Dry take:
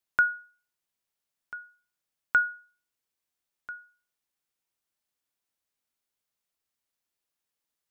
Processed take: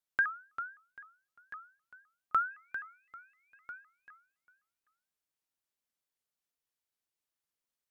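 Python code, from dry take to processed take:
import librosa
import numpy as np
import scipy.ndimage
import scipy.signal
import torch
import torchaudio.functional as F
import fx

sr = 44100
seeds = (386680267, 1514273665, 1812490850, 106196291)

y = fx.dmg_tone(x, sr, hz=2300.0, level_db=-63.0, at=(2.5, 3.77), fade=0.02)
y = fx.echo_feedback(y, sr, ms=395, feedback_pct=25, wet_db=-10.5)
y = fx.vibrato_shape(y, sr, shape='saw_up', rate_hz=3.9, depth_cents=250.0)
y = F.gain(torch.from_numpy(y), -6.0).numpy()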